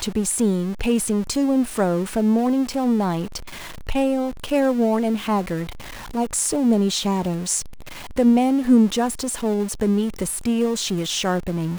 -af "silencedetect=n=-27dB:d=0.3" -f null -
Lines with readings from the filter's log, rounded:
silence_start: 3.37
silence_end: 3.89 | silence_duration: 0.51
silence_start: 5.69
silence_end: 6.15 | silence_duration: 0.45
silence_start: 7.61
silence_end: 8.17 | silence_duration: 0.56